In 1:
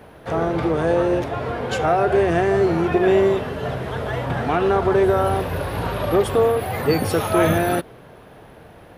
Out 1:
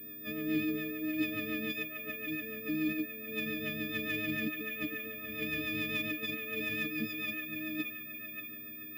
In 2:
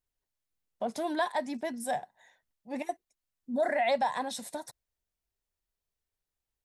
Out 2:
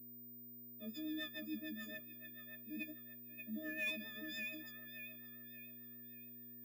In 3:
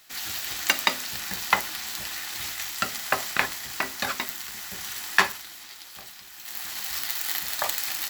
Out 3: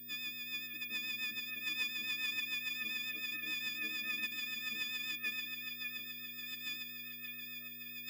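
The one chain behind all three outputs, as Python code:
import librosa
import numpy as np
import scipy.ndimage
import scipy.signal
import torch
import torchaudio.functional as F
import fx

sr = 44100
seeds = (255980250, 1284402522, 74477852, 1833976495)

p1 = fx.freq_snap(x, sr, grid_st=6)
p2 = fx.dynamic_eq(p1, sr, hz=2400.0, q=3.5, threshold_db=-37.0, ratio=4.0, max_db=6)
p3 = fx.over_compress(p2, sr, threshold_db=-20.0, ratio=-0.5)
p4 = fx.rotary(p3, sr, hz=7.0)
p5 = fx.dmg_buzz(p4, sr, base_hz=120.0, harmonics=7, level_db=-50.0, tilt_db=-7, odd_only=False)
p6 = 10.0 ** (-11.0 / 20.0) * np.tanh(p5 / 10.0 ** (-11.0 / 20.0))
p7 = fx.vowel_filter(p6, sr, vowel='i')
p8 = p7 + fx.echo_wet_bandpass(p7, sr, ms=584, feedback_pct=43, hz=1500.0, wet_db=-4.0, dry=0)
p9 = np.repeat(p8[::2], 2)[:len(p8)]
p10 = fx.pwm(p9, sr, carrier_hz=15000.0)
y = p10 * librosa.db_to_amplitude(2.5)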